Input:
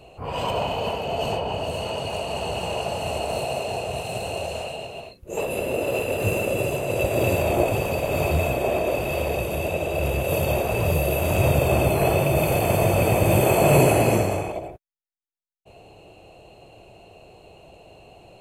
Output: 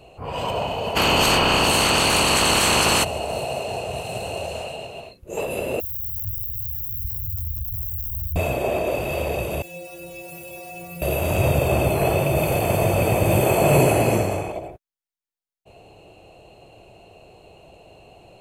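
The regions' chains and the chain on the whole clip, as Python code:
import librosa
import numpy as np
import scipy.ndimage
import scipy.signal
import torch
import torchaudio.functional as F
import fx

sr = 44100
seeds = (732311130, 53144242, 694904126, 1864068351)

y = fx.spec_clip(x, sr, under_db=22, at=(0.95, 3.03), fade=0.02)
y = fx.env_flatten(y, sr, amount_pct=70, at=(0.95, 3.03), fade=0.02)
y = fx.chain(y, sr, fx.crossing_spikes(level_db=-19.5),
    fx.cheby2_bandstop(low_hz=210.0, high_hz=8300.0, order=4, stop_db=50),
    fx.env_flatten(amount_pct=50), at=(5.8, 8.36))
y = fx.chain(y, sr, fx.crossing_spikes(level_db=-20.5),
    fx.stiff_resonator(f0_hz=170.0, decay_s=0.67, stiffness=0.008), at=(9.62, 11.02))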